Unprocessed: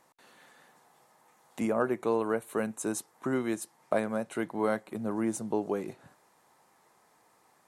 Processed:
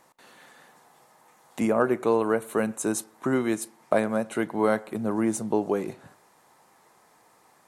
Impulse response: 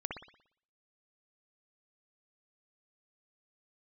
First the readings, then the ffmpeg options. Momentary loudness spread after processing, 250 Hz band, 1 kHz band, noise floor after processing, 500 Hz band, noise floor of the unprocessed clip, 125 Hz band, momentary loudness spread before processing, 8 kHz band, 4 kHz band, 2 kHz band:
6 LU, +5.5 dB, +5.5 dB, -60 dBFS, +5.5 dB, -66 dBFS, +5.5 dB, 6 LU, +5.5 dB, +5.5 dB, +5.5 dB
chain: -filter_complex "[0:a]asplit=2[s0][s1];[1:a]atrim=start_sample=2205,adelay=37[s2];[s1][s2]afir=irnorm=-1:irlink=0,volume=0.0794[s3];[s0][s3]amix=inputs=2:normalize=0,volume=1.88"

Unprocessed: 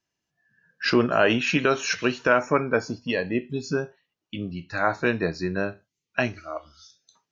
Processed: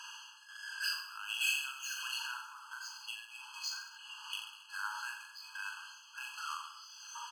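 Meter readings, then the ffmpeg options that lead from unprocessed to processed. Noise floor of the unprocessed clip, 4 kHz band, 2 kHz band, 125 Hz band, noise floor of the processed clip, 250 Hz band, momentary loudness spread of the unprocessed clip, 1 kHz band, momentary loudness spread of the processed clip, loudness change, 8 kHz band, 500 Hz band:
-85 dBFS, -5.5 dB, -12.5 dB, under -40 dB, -57 dBFS, under -40 dB, 14 LU, -16.0 dB, 13 LU, -15.0 dB, no reading, under -40 dB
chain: -af "aeval=exprs='val(0)+0.5*0.0251*sgn(val(0))':c=same,adynamicsmooth=sensitivity=6.5:basefreq=1800,highpass=f=530:t=q:w=4.9,equalizer=f=990:t=o:w=2.6:g=-13.5,acompressor=threshold=0.0398:ratio=5,alimiter=level_in=1.41:limit=0.0631:level=0:latency=1,volume=0.708,tremolo=f=1.4:d=0.7,aecho=1:1:40|86|138.9|199.7|269.7:0.631|0.398|0.251|0.158|0.1,afftfilt=real='re*eq(mod(floor(b*sr/1024/840),2),1)':imag='im*eq(mod(floor(b*sr/1024/840),2),1)':win_size=1024:overlap=0.75,volume=2"

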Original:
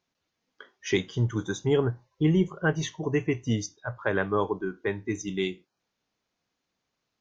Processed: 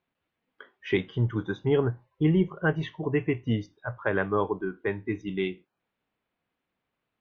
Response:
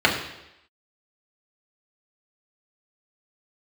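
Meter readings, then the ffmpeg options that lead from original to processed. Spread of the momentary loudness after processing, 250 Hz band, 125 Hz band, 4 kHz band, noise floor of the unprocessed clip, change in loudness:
8 LU, 0.0 dB, 0.0 dB, -4.5 dB, -82 dBFS, 0.0 dB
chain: -af "lowpass=f=3100:w=0.5412,lowpass=f=3100:w=1.3066"

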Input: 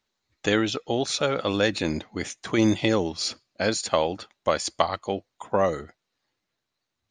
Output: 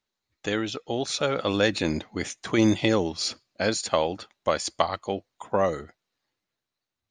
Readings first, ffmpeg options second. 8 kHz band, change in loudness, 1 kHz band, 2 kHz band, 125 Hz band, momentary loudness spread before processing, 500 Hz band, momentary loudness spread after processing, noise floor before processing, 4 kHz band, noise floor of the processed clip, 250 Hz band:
-1.0 dB, -1.0 dB, -1.0 dB, -1.0 dB, -0.5 dB, 8 LU, -1.0 dB, 10 LU, -82 dBFS, -1.0 dB, under -85 dBFS, -0.5 dB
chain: -af "dynaudnorm=f=210:g=11:m=3.76,volume=0.531"

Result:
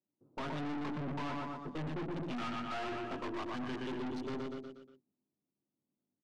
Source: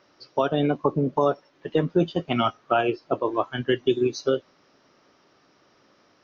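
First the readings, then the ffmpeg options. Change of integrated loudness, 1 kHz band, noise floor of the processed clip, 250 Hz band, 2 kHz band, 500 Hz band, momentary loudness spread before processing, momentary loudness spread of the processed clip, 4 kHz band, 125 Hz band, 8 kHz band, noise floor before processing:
-15.0 dB, -14.0 dB, under -85 dBFS, -12.5 dB, -11.0 dB, -19.5 dB, 4 LU, 5 LU, -14.0 dB, -13.0 dB, no reading, -62 dBFS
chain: -filter_complex "[0:a]agate=range=0.0708:threshold=0.00178:ratio=16:detection=peak,lowshelf=f=67:g=-10,bandreject=f=60:t=h:w=6,bandreject=f=120:t=h:w=6,bandreject=f=180:t=h:w=6,bandreject=f=240:t=h:w=6,bandreject=f=300:t=h:w=6,asplit=2[s0][s1];[s1]adelay=20,volume=0.562[s2];[s0][s2]amix=inputs=2:normalize=0,acrossover=split=270|620[s3][s4][s5];[s5]aeval=exprs='val(0)*gte(abs(val(0)),0.0299)':c=same[s6];[s3][s4][s6]amix=inputs=3:normalize=0,equalizer=f=125:t=o:w=1:g=4,equalizer=f=250:t=o:w=1:g=9,equalizer=f=500:t=o:w=1:g=-10,equalizer=f=1000:t=o:w=1:g=5,asplit=2[s7][s8];[s8]aecho=0:1:120|240|360|480|600:0.447|0.205|0.0945|0.0435|0.02[s9];[s7][s9]amix=inputs=2:normalize=0,aeval=exprs='(tanh(44.7*val(0)+0.4)-tanh(0.4))/44.7':c=same,lowpass=4100,volume=0.596"

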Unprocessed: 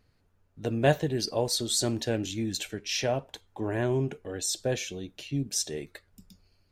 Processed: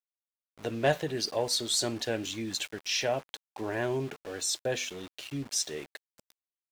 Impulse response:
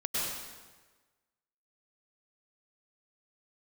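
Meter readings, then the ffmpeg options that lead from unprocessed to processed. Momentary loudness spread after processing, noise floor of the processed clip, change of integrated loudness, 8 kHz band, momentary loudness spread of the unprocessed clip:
11 LU, under -85 dBFS, -1.5 dB, -1.0 dB, 11 LU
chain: -filter_complex "[0:a]bandreject=f=84.19:t=h:w=4,bandreject=f=168.38:t=h:w=4,bandreject=f=252.57:t=h:w=4,aeval=exprs='val(0)*gte(abs(val(0)),0.00708)':c=same,asplit=2[s0][s1];[s1]highpass=f=720:p=1,volume=3.16,asoftclip=type=tanh:threshold=0.316[s2];[s0][s2]amix=inputs=2:normalize=0,lowpass=f=6500:p=1,volume=0.501,volume=0.668"

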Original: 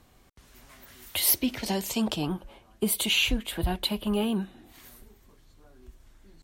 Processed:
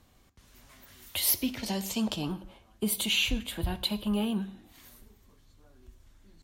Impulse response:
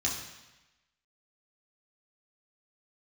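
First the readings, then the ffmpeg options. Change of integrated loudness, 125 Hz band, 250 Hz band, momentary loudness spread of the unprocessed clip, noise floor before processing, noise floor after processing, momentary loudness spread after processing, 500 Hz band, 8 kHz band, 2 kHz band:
-3.0 dB, -2.0 dB, -2.0 dB, 10 LU, -59 dBFS, -62 dBFS, 10 LU, -5.5 dB, -3.0 dB, -3.5 dB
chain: -filter_complex "[0:a]asplit=2[s0][s1];[1:a]atrim=start_sample=2205,afade=t=out:st=0.23:d=0.01,atrim=end_sample=10584[s2];[s1][s2]afir=irnorm=-1:irlink=0,volume=0.141[s3];[s0][s3]amix=inputs=2:normalize=0,volume=0.631"

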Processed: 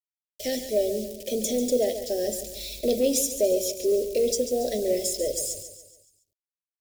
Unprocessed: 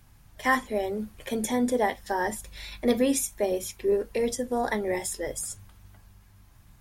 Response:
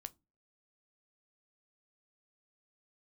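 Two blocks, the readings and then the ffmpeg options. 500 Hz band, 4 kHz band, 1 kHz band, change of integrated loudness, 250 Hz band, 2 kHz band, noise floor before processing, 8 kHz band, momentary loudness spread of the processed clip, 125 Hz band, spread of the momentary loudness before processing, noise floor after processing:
+4.0 dB, +5.5 dB, -12.5 dB, +2.0 dB, -1.5 dB, -14.0 dB, -56 dBFS, +5.0 dB, 8 LU, no reading, 9 LU, under -85 dBFS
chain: -af "agate=range=0.251:threshold=0.00631:ratio=16:detection=peak,asuperstop=centerf=1100:order=4:qfactor=1.2,asoftclip=type=tanh:threshold=0.0841,equalizer=f=10000:t=o:w=0.71:g=-10.5,acrusher=bits=7:mix=0:aa=0.000001,firequalizer=gain_entry='entry(150,0);entry(610,13);entry(960,-27);entry(2500,2);entry(4900,14)':delay=0.05:min_phase=1,aecho=1:1:141|282|423|564|705:0.299|0.14|0.0659|0.031|0.0146,volume=0.708"

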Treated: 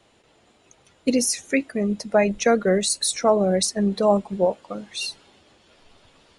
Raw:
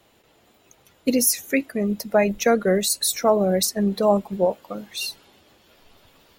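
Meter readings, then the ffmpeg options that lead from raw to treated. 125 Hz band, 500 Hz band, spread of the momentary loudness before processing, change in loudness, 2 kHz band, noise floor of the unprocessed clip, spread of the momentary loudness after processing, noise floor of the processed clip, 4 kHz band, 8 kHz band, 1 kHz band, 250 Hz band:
0.0 dB, 0.0 dB, 10 LU, -0.5 dB, 0.0 dB, -59 dBFS, 10 LU, -60 dBFS, 0.0 dB, -1.0 dB, 0.0 dB, 0.0 dB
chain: -af "aresample=22050,aresample=44100"

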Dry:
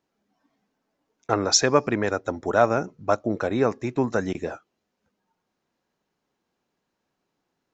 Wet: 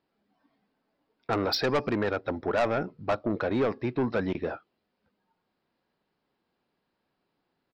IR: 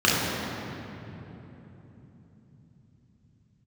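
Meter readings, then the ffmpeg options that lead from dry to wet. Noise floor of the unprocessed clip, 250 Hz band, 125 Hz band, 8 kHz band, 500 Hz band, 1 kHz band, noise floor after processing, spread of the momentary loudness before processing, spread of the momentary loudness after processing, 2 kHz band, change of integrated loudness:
-80 dBFS, -3.5 dB, -3.5 dB, no reading, -4.5 dB, -6.0 dB, -80 dBFS, 12 LU, 6 LU, -4.0 dB, -5.5 dB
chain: -af "aresample=11025,aresample=44100,asoftclip=type=tanh:threshold=0.1"

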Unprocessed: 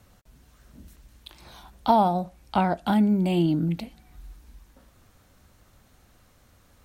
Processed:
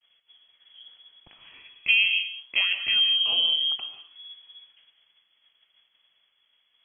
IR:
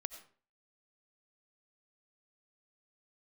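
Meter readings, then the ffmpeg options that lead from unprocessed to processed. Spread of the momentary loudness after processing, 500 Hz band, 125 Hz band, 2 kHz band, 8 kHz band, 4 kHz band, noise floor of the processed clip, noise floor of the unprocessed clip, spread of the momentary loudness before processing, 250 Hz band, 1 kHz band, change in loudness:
10 LU, -24.0 dB, under -30 dB, +15.5 dB, no reading, +21.0 dB, -70 dBFS, -60 dBFS, 10 LU, under -35 dB, -25.5 dB, +2.5 dB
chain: -filter_complex "[0:a]agate=range=0.0224:threshold=0.00316:ratio=3:detection=peak[s0];[1:a]atrim=start_sample=2205,atrim=end_sample=6174,asetrate=27783,aresample=44100[s1];[s0][s1]afir=irnorm=-1:irlink=0,lowpass=f=2900:t=q:w=0.5098,lowpass=f=2900:t=q:w=0.6013,lowpass=f=2900:t=q:w=0.9,lowpass=f=2900:t=q:w=2.563,afreqshift=-3400,volume=0.841"

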